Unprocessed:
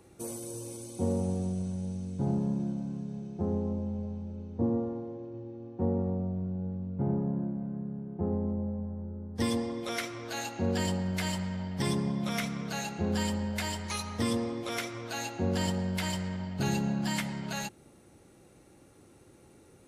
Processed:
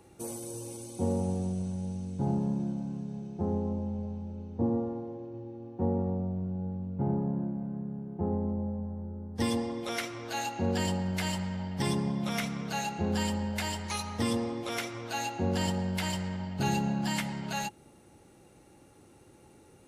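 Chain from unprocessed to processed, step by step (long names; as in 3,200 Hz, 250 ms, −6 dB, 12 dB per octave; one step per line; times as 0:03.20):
hollow resonant body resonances 840/2,800 Hz, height 7 dB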